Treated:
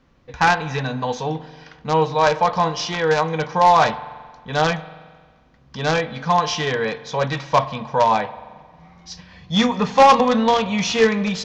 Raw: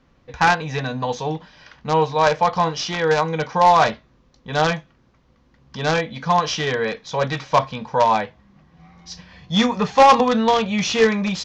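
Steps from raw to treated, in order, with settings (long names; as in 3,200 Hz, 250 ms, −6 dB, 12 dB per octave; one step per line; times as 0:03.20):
spring reverb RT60 1.6 s, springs 44 ms, chirp 30 ms, DRR 15 dB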